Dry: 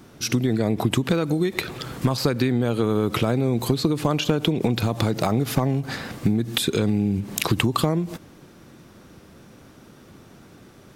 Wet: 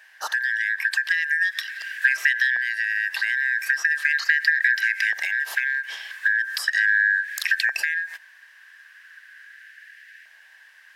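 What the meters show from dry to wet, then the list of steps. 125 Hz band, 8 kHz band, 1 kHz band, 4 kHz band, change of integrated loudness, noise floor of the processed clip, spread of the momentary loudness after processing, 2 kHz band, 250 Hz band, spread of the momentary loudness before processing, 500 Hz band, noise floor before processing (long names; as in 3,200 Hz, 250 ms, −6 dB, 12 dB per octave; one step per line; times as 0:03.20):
below −40 dB, −5.0 dB, below −10 dB, −3.0 dB, +1.5 dB, −52 dBFS, 6 LU, +17.0 dB, below −40 dB, 4 LU, below −30 dB, −49 dBFS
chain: band-splitting scrambler in four parts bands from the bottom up 4123
auto-filter high-pass saw up 0.39 Hz 740–2,000 Hz
level −5.5 dB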